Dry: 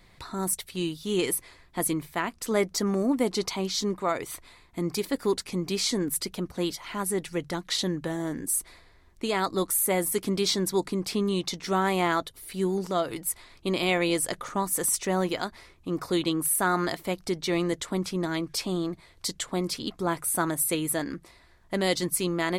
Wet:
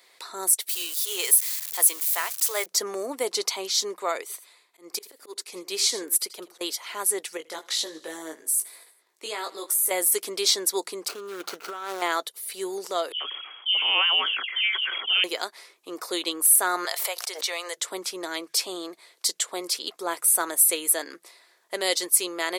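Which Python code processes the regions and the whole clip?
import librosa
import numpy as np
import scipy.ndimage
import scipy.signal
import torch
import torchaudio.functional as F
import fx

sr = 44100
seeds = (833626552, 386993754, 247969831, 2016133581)

y = fx.chain(x, sr, fx.crossing_spikes(level_db=-28.5),
    fx.highpass(hz=630.0, slope=12), at=(0.69, 2.66))
y = fx.chain(y, sr, fx.auto_swell(attack_ms=161.0),
    fx.echo_single(ms=83, db=-14.5),
    fx.upward_expand(threshold_db=-37.0, expansion=1.5), at=(4.21, 6.61))
y = fx.chain(y, sr, fx.level_steps(step_db=11),
    fx.doubler(ms=19.0, db=-4.0),
    fx.echo_feedback(ms=79, feedback_pct=58, wet_db=-21), at=(7.37, 9.91))
y = fx.chain(y, sr, fx.median_filter(points=25),
    fx.peak_eq(hz=1400.0, db=14.5, octaves=0.4),
    fx.over_compress(threshold_db=-31.0, ratio=-1.0), at=(11.08, 12.02))
y = fx.chain(y, sr, fx.dispersion(late='highs', ms=89.0, hz=630.0),
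    fx.freq_invert(carrier_hz=3300),
    fx.sustainer(db_per_s=39.0), at=(13.12, 15.24))
y = fx.chain(y, sr, fx.highpass(hz=560.0, slope=24),
    fx.pre_swell(db_per_s=66.0), at=(16.85, 17.77))
y = scipy.signal.sosfilt(scipy.signal.cheby1(3, 1.0, 420.0, 'highpass', fs=sr, output='sos'), y)
y = fx.high_shelf(y, sr, hz=3700.0, db=9.5)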